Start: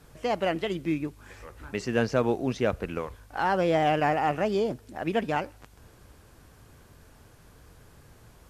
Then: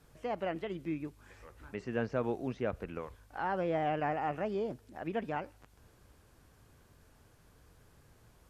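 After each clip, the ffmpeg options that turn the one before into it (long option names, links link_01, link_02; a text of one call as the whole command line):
ffmpeg -i in.wav -filter_complex "[0:a]acrossover=split=2700[link_01][link_02];[link_02]acompressor=threshold=-54dB:ratio=4:attack=1:release=60[link_03];[link_01][link_03]amix=inputs=2:normalize=0,volume=-8.5dB" out.wav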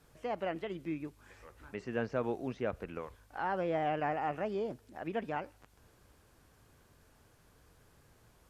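ffmpeg -i in.wav -af "lowshelf=frequency=220:gain=-3.5" out.wav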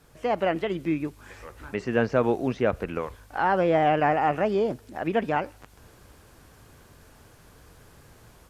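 ffmpeg -i in.wav -af "dynaudnorm=framelen=130:gausssize=3:maxgain=5dB,volume=6.5dB" out.wav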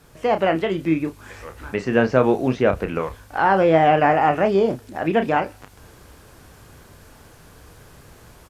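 ffmpeg -i in.wav -filter_complex "[0:a]asplit=2[link_01][link_02];[link_02]adelay=31,volume=-9dB[link_03];[link_01][link_03]amix=inputs=2:normalize=0,volume=5.5dB" out.wav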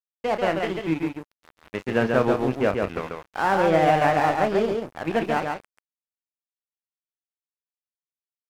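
ffmpeg -i in.wav -af "aeval=exprs='sgn(val(0))*max(abs(val(0))-0.0335,0)':channel_layout=same,aecho=1:1:139:0.631,volume=-3.5dB" out.wav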